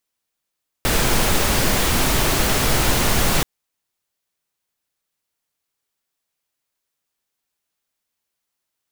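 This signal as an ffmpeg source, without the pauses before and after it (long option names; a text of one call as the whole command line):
ffmpeg -f lavfi -i "anoisesrc=color=pink:amplitude=0.684:duration=2.58:sample_rate=44100:seed=1" out.wav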